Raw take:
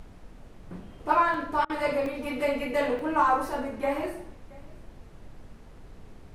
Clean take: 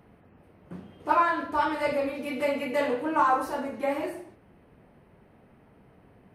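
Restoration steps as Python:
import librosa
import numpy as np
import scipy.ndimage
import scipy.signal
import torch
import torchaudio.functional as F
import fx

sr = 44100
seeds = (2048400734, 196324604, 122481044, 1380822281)

y = fx.fix_interpolate(x, sr, at_s=(1.34, 2.06, 2.99), length_ms=1.7)
y = fx.fix_interpolate(y, sr, at_s=(1.65,), length_ms=45.0)
y = fx.noise_reduce(y, sr, print_start_s=0.06, print_end_s=0.56, reduce_db=9.0)
y = fx.fix_echo_inverse(y, sr, delay_ms=675, level_db=-23.5)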